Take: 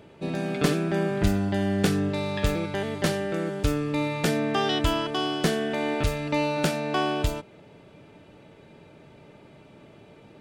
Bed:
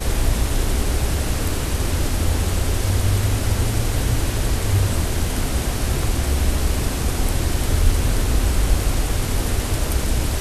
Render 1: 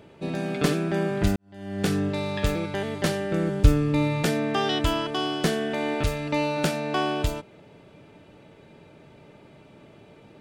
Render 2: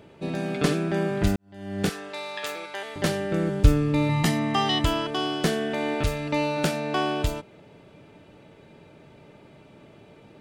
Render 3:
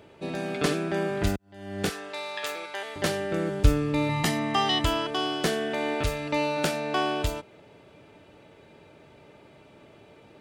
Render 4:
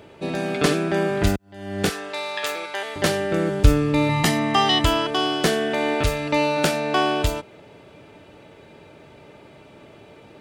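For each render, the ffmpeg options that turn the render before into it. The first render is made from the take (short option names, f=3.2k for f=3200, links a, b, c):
-filter_complex "[0:a]asettb=1/sr,asplit=3[a][b][c];[a]atrim=end=3.314[d];[b]atrim=start=3.31:end=4.23,asetpts=PTS-STARTPTS,afade=t=in:d=0.004:c=qsin,afade=t=out:st=0.916:d=0.004:c=qsin,lowshelf=f=190:g=11.5[e];[c]atrim=start=4.226[f];[d][e]acrossfade=d=0.004:c1=hsin:c2=qsin[g];[g][f]acrossfade=d=0.004:c1=qsin:c2=hsin,asplit=2[h][i];[h]atrim=end=1.36,asetpts=PTS-STARTPTS,afade=t=out:st=1.356:d=0.004:c=hsin[j];[i]atrim=start=1.36,asetpts=PTS-STARTPTS,afade=t=in:d=0.56:c=qua[k];[j][k]concat=n=2:v=0:a=1"
-filter_complex "[0:a]asettb=1/sr,asplit=3[a][b][c];[a]atrim=end=0.574[d];[b]atrim=start=0.57:end=0.97,asetpts=PTS-STARTPTS,afade=t=in:d=0.004:c=qsin,afade=t=out:st=0.396:d=0.004:c=qsin,lowpass=12k[e];[c]atrim=start=0.966[f];[d][e]acrossfade=d=0.004:c1=hsin:c2=qsin[g];[g][f]acrossfade=d=0.004:c1=qsin:c2=hsin,asettb=1/sr,asplit=3[h][i][j];[h]atrim=end=1.894[k];[i]atrim=start=1.89:end=2.96,asetpts=PTS-STARTPTS,afade=t=in:d=0.004:c=qsin,afade=t=out:st=1.066:d=0.004:c=qsin,highpass=710[l];[j]atrim=start=2.956[m];[k][l]acrossfade=d=0.004:c1=hsin:c2=qsin[n];[n][m]acrossfade=d=0.004:c1=qsin:c2=hsin,asettb=1/sr,asplit=3[o][p][q];[o]atrim=end=4.094[r];[p]atrim=start=4.09:end=4.85,asetpts=PTS-STARTPTS,afade=t=in:d=0.004:c=qsin,afade=t=out:st=0.756:d=0.004:c=qsin,aecho=1:1:1:0.74,atrim=end_sample=33516[s];[q]atrim=start=4.846[t];[r][s]acrossfade=d=0.004:c1=hsin:c2=qsin[u];[u][t]acrossfade=d=0.004:c1=qsin:c2=hsin"
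-af "highpass=42,equalizer=f=170:w=0.96:g=-6"
-af "volume=6dB,alimiter=limit=-1dB:level=0:latency=1"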